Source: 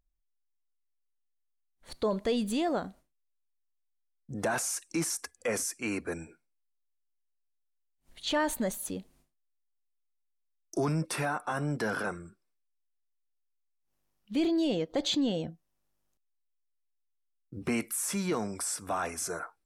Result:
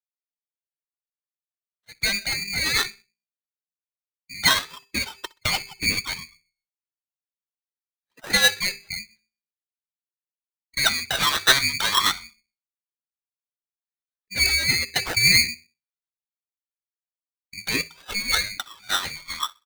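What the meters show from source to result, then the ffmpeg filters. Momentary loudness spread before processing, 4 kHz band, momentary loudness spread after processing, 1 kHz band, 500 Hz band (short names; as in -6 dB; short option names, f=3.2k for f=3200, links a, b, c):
10 LU, +18.0 dB, 14 LU, +6.5 dB, -5.0 dB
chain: -filter_complex "[0:a]agate=range=-12dB:threshold=-58dB:ratio=16:detection=peak,afftdn=nr=21:nf=-47,highpass=f=190:w=0.5412,highpass=f=190:w=1.3066,equalizer=f=1.1k:t=o:w=1:g=8.5,bandreject=f=60:t=h:w=6,bandreject=f=120:t=h:w=6,bandreject=f=180:t=h:w=6,bandreject=f=240:t=h:w=6,bandreject=f=300:t=h:w=6,bandreject=f=360:t=h:w=6,bandreject=f=420:t=h:w=6,dynaudnorm=f=360:g=11:m=6dB,aeval=exprs='0.376*(cos(1*acos(clip(val(0)/0.376,-1,1)))-cos(1*PI/2))+0.00266*(cos(3*acos(clip(val(0)/0.376,-1,1)))-cos(3*PI/2))+0.00944*(cos(4*acos(clip(val(0)/0.376,-1,1)))-cos(4*PI/2))+0.0668*(cos(5*acos(clip(val(0)/0.376,-1,1)))-cos(5*PI/2))':c=same,acrossover=split=490[a][b];[a]aeval=exprs='val(0)*(1-0.7/2+0.7/2*cos(2*PI*8.3*n/s))':c=same[c];[b]aeval=exprs='val(0)*(1-0.7/2-0.7/2*cos(2*PI*8.3*n/s))':c=same[d];[c][d]amix=inputs=2:normalize=0,aphaser=in_gain=1:out_gain=1:delay=2.6:decay=0.67:speed=0.52:type=triangular,asplit=2[e][f];[f]adelay=63,lowpass=f=1.4k:p=1,volume=-22dB,asplit=2[g][h];[h]adelay=63,lowpass=f=1.4k:p=1,volume=0.38,asplit=2[i][j];[j]adelay=63,lowpass=f=1.4k:p=1,volume=0.38[k];[e][g][i][k]amix=inputs=4:normalize=0,lowpass=f=3.1k:t=q:w=0.5098,lowpass=f=3.1k:t=q:w=0.6013,lowpass=f=3.1k:t=q:w=0.9,lowpass=f=3.1k:t=q:w=2.563,afreqshift=-3700,aeval=exprs='val(0)*sgn(sin(2*PI*1100*n/s))':c=same"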